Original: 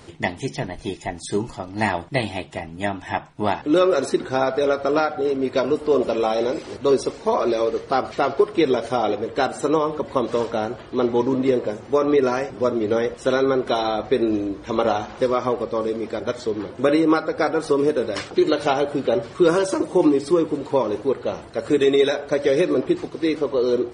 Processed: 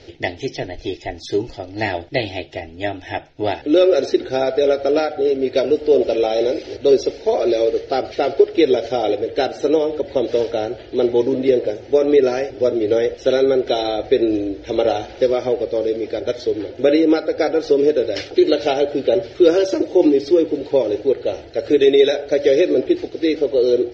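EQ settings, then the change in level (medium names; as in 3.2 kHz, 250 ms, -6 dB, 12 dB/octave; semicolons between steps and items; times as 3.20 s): steep low-pass 5.9 kHz 48 dB/octave; static phaser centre 450 Hz, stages 4; +5.0 dB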